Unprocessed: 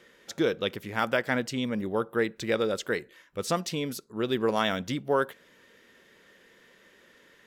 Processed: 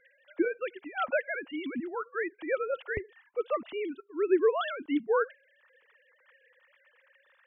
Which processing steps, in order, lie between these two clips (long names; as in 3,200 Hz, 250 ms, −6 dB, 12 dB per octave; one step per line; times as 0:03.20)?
three sine waves on the formant tracks
parametric band 440 Hz −13 dB 0.39 octaves, from 0:02.97 85 Hz, from 0:04.61 720 Hz
level +1 dB